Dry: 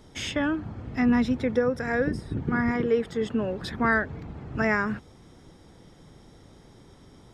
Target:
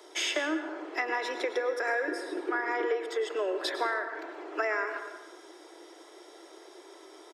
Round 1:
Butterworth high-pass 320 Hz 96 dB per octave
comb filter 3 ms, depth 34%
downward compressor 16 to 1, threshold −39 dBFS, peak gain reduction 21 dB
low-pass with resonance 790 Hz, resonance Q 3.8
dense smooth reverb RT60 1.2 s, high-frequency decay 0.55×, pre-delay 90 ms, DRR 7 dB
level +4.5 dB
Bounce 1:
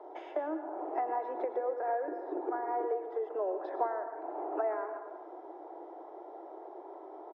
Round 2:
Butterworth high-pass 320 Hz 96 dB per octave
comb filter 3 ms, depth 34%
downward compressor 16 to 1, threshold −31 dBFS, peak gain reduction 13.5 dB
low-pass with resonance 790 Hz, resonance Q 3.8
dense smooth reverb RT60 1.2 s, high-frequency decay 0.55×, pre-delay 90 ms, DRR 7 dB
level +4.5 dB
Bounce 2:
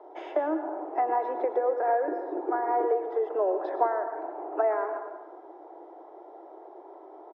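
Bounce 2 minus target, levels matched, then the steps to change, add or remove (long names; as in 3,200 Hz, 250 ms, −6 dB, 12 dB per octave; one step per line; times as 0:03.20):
1,000 Hz band +4.0 dB
remove: low-pass with resonance 790 Hz, resonance Q 3.8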